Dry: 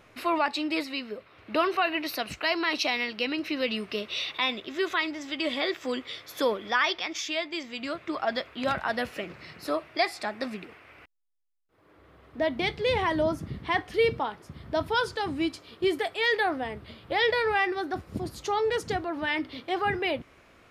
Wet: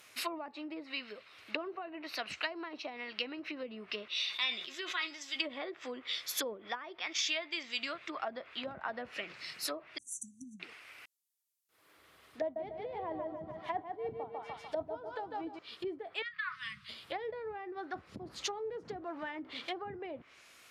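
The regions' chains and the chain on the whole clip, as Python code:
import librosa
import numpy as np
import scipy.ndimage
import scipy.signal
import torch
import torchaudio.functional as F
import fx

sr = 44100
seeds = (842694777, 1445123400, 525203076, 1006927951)

y = fx.chain(x, sr, fx.comb_fb(f0_hz=180.0, decay_s=0.19, harmonics='all', damping=0.0, mix_pct=70),
    fx.sustainer(db_per_s=69.0), at=(4.08, 5.36))
y = fx.chain(y, sr, fx.transient(attack_db=7, sustain_db=-2),
    fx.brickwall_bandstop(low_hz=280.0, high_hz=5800.0),
    fx.resample_bad(factor=2, down='none', up='filtered'), at=(9.98, 10.6))
y = fx.chain(y, sr, fx.tremolo(hz=2.9, depth=0.72),
    fx.peak_eq(hz=720.0, db=10.5, octaves=0.68),
    fx.echo_thinned(ms=148, feedback_pct=50, hz=150.0, wet_db=-4.5), at=(12.41, 15.59))
y = fx.chain(y, sr, fx.brickwall_bandstop(low_hz=220.0, high_hz=1000.0),
    fx.high_shelf(hz=5500.0, db=-8.0),
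    fx.comb(ms=6.2, depth=0.4), at=(16.22, 16.89))
y = fx.chain(y, sr, fx.law_mismatch(coded='mu'),
    fx.peak_eq(hz=93.0, db=-12.0, octaves=0.29), at=(18.27, 19.78))
y = fx.low_shelf(y, sr, hz=230.0, db=11.5)
y = fx.env_lowpass_down(y, sr, base_hz=470.0, full_db=-21.5)
y = np.diff(y, prepend=0.0)
y = y * librosa.db_to_amplitude(10.5)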